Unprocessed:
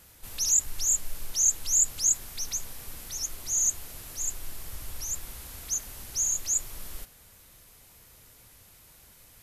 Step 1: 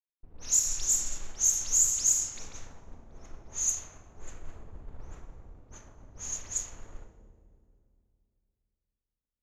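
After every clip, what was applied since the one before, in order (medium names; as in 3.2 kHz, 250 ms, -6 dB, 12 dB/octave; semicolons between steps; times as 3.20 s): crossover distortion -44.5 dBFS; Schroeder reverb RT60 3.1 s, combs from 27 ms, DRR 1.5 dB; level-controlled noise filter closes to 370 Hz, open at -19.5 dBFS; trim -1.5 dB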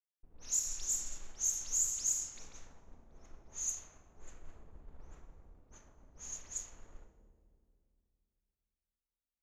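peaking EQ 100 Hz -11.5 dB 0.23 oct; trim -8.5 dB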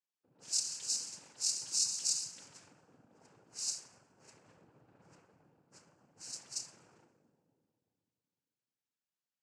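noise-vocoded speech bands 8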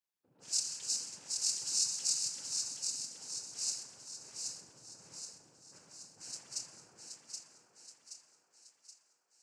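thinning echo 775 ms, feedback 52%, high-pass 390 Hz, level -4.5 dB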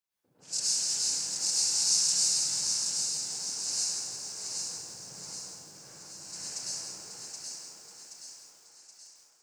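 plate-style reverb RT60 1.4 s, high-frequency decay 0.7×, pre-delay 90 ms, DRR -8 dB; bit-crushed delay 167 ms, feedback 55%, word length 9-bit, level -8.5 dB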